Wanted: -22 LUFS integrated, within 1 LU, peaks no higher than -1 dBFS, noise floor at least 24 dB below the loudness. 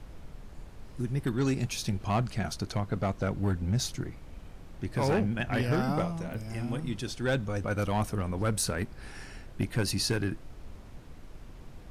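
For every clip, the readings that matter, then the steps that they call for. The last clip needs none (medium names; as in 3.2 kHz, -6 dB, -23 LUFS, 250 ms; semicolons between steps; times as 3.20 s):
clipped samples 0.7%; clipping level -21.0 dBFS; noise floor -48 dBFS; noise floor target -55 dBFS; loudness -31.0 LUFS; peak level -21.0 dBFS; loudness target -22.0 LUFS
-> clip repair -21 dBFS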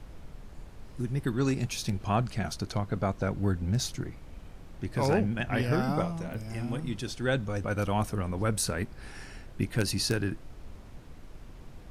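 clipped samples 0.0%; noise floor -48 dBFS; noise floor target -55 dBFS
-> noise print and reduce 7 dB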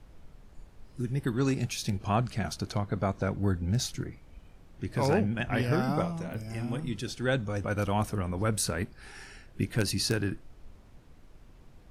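noise floor -55 dBFS; loudness -31.0 LUFS; peak level -12.5 dBFS; loudness target -22.0 LUFS
-> trim +9 dB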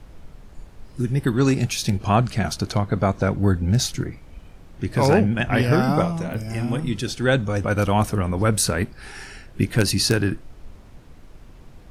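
loudness -22.0 LUFS; peak level -3.5 dBFS; noise floor -46 dBFS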